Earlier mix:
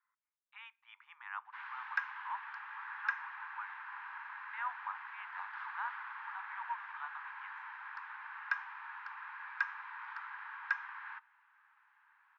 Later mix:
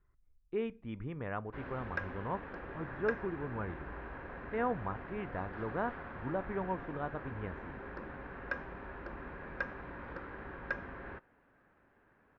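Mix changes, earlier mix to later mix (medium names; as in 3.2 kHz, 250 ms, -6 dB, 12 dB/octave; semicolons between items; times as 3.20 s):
background -3.5 dB; master: remove steep high-pass 850 Hz 96 dB/octave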